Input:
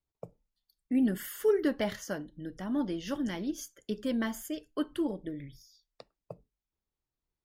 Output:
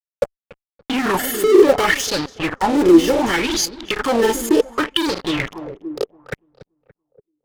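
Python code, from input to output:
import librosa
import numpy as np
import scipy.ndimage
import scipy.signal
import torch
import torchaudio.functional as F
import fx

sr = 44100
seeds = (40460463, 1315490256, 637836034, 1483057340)

p1 = x + 0.66 * np.pad(x, (int(2.3 * sr / 1000.0), 0))[:len(x)]
p2 = fx.fuzz(p1, sr, gain_db=51.0, gate_db=-44.0)
p3 = fx.granulator(p2, sr, seeds[0], grain_ms=100.0, per_s=20.0, spray_ms=27.0, spread_st=0)
p4 = p3 + fx.echo_filtered(p3, sr, ms=286, feedback_pct=36, hz=1500.0, wet_db=-12.5, dry=0)
p5 = fx.bell_lfo(p4, sr, hz=0.68, low_hz=320.0, high_hz=4600.0, db=16)
y = F.gain(torch.from_numpy(p5), -5.0).numpy()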